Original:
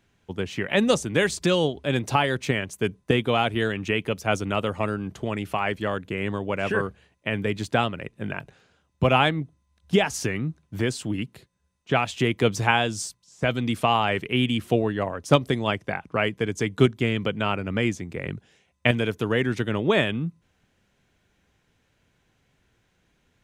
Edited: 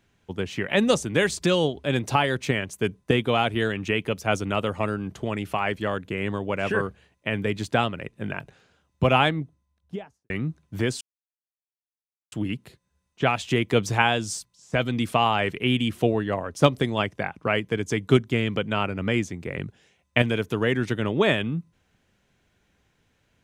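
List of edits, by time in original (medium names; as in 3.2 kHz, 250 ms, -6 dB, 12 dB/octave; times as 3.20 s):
9.20–10.30 s: studio fade out
11.01 s: insert silence 1.31 s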